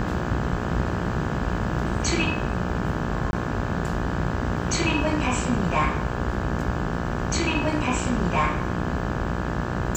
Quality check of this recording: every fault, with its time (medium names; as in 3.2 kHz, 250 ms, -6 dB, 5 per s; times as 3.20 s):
buzz 60 Hz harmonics 29 -30 dBFS
3.31–3.33 s: dropout 21 ms